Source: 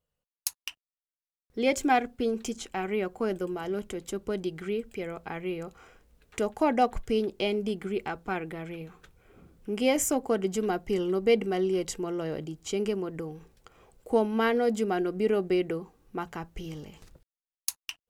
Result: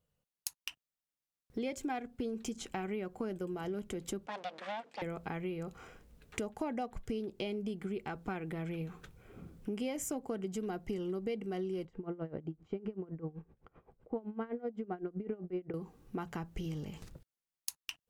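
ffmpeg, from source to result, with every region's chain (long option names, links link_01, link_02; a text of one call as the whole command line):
ffmpeg -i in.wav -filter_complex "[0:a]asettb=1/sr,asplit=3[link_01][link_02][link_03];[link_01]atrim=end=4.264[link_04];[link_02]atrim=start=4.26:end=5.02,asetpts=PTS-STARTPTS,afade=type=in:duration=0.004:curve=qsin,afade=type=out:start_time=0.756:duration=0.004:curve=qsin,aeval=exprs='abs(val(0))':channel_layout=same,highpass=520,lowpass=4600[link_05];[link_03]atrim=start=5.016[link_06];[link_04][link_05]acrossfade=duration=0.004:curve1=hsin:curve2=qsin[link_07];[link_07][link_06]acrossfade=duration=0.004:curve1=qsin:curve2=hsin,asettb=1/sr,asplit=3[link_08][link_09][link_10];[link_08]atrim=end=11.854[link_11];[link_09]atrim=start=11.85:end=15.74,asetpts=PTS-STARTPTS,afade=type=in:duration=0.004:curve=qsin,afade=type=out:start_time=3.886:duration=0.004:curve=qsin,lowpass=1600,aeval=exprs='val(0)*pow(10,-21*(0.5-0.5*cos(2*PI*7.8*n/s))/20)':channel_layout=same[link_12];[link_10]atrim=start=15.736[link_13];[link_11][link_12]acrossfade=duration=0.004:curve1=hsin:curve2=qsin[link_14];[link_14][link_13]acrossfade=duration=0.004:curve1=qsin:curve2=hsin,equalizer=frequency=150:width=0.75:gain=6.5,acompressor=threshold=-36dB:ratio=5" out.wav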